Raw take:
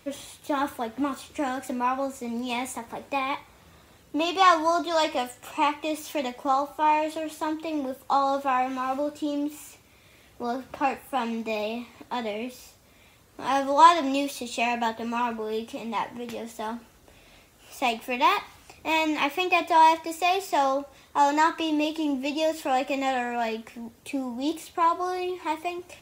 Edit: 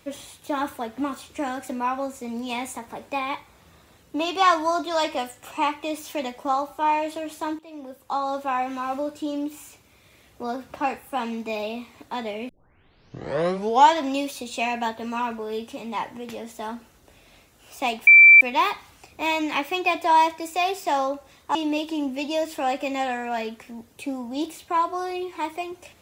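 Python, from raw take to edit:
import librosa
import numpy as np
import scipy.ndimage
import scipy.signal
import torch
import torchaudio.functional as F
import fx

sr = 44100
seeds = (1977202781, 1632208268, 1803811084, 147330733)

y = fx.edit(x, sr, fx.fade_in_from(start_s=7.59, length_s=1.38, curve='qsin', floor_db=-16.5),
    fx.tape_start(start_s=12.49, length_s=1.52),
    fx.insert_tone(at_s=18.07, length_s=0.34, hz=2340.0, db=-6.5),
    fx.cut(start_s=21.21, length_s=0.41), tone=tone)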